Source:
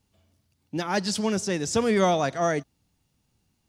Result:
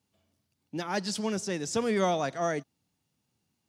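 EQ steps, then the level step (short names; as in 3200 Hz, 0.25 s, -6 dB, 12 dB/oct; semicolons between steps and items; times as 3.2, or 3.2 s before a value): HPF 120 Hz 12 dB/oct; -5.0 dB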